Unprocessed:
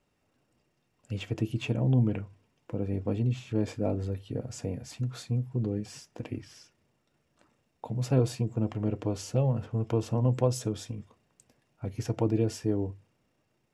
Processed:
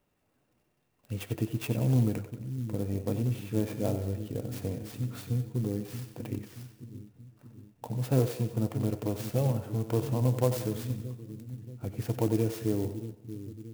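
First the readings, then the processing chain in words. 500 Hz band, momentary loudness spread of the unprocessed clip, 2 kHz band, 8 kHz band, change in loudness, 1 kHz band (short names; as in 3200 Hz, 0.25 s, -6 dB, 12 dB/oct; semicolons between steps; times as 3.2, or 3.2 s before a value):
-0.5 dB, 13 LU, -0.5 dB, -1.0 dB, -1.0 dB, -0.5 dB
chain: split-band echo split 350 Hz, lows 0.628 s, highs 92 ms, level -10 dB; clock jitter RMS 0.047 ms; gain -1 dB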